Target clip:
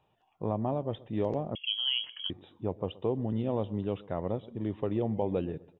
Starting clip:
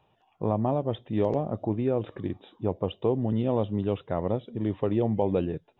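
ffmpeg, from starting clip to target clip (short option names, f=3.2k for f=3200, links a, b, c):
-filter_complex "[0:a]asplit=2[a][b];[b]adelay=126,lowpass=f=1.9k:p=1,volume=-20.5dB,asplit=2[c][d];[d]adelay=126,lowpass=f=1.9k:p=1,volume=0.38,asplit=2[e][f];[f]adelay=126,lowpass=f=1.9k:p=1,volume=0.38[g];[a][c][e][g]amix=inputs=4:normalize=0,asettb=1/sr,asplit=3[h][i][j];[h]atrim=end=1.554[k];[i]atrim=start=1.55:end=2.3,asetpts=PTS-STARTPTS,afade=t=in:d=0.004:c=qsin,afade=t=out:st=0.746:d=0.004:c=qsin,lowpass=f=2.9k:t=q:w=0.5098,lowpass=f=2.9k:t=q:w=0.6013,lowpass=f=2.9k:t=q:w=0.9,lowpass=f=2.9k:t=q:w=2.563,afreqshift=-3400[l];[j]atrim=start=2.296[m];[k][l]acrossfade=d=0.004:c1=hsin:c2=qsin[n];[n][m]acrossfade=d=0.004:c1=qsin:c2=hsin,volume=-5dB"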